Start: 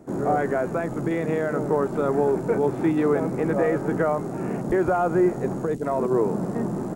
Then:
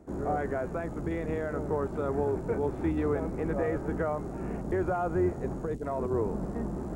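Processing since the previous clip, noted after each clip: octaver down 2 oct, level -3 dB; reverse; upward compressor, threshold -25 dBFS; reverse; high shelf 8300 Hz -5 dB; gain -8 dB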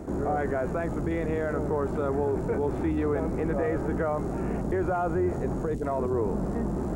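fast leveller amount 50%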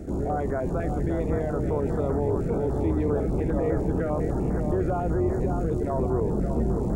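low shelf 110 Hz +6.5 dB; darkening echo 0.566 s, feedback 57%, low-pass 3200 Hz, level -6 dB; stepped notch 10 Hz 1000–2800 Hz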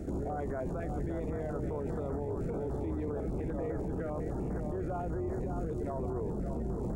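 limiter -25.5 dBFS, peak gain reduction 11.5 dB; gain -2.5 dB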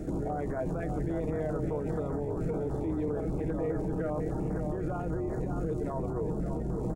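comb 6.4 ms, depth 40%; gain +2.5 dB

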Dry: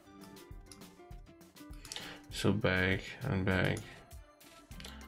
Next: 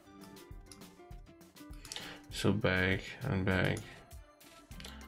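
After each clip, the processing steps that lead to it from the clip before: nothing audible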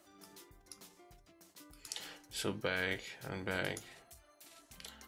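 tone controls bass -9 dB, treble +7 dB; gain -4 dB

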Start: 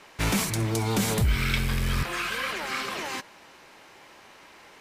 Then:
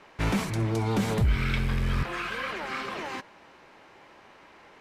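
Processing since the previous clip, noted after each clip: LPF 1900 Hz 6 dB/oct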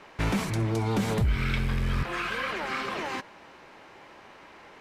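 compressor 1.5:1, threshold -32 dBFS, peak gain reduction 5 dB; gain +3 dB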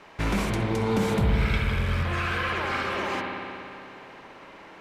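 spring tank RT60 2.7 s, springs 58 ms, chirp 30 ms, DRR -0.5 dB

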